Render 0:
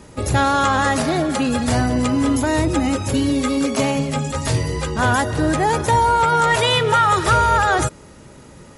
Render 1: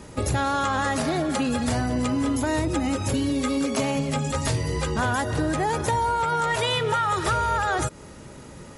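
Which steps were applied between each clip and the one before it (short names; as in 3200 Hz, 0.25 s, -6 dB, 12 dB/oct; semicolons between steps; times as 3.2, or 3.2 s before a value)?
compressor 4:1, threshold -22 dBFS, peak gain reduction 9.5 dB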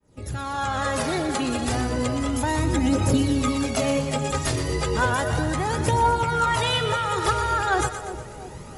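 opening faded in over 1.00 s; phaser 0.33 Hz, delay 2.9 ms, feedback 48%; split-band echo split 790 Hz, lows 0.342 s, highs 0.121 s, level -9.5 dB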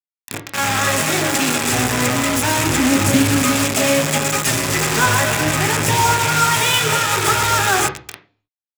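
bit-crush 4-bit; reverb RT60 0.40 s, pre-delay 3 ms, DRR 5.5 dB; Doppler distortion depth 0.15 ms; gain +6.5 dB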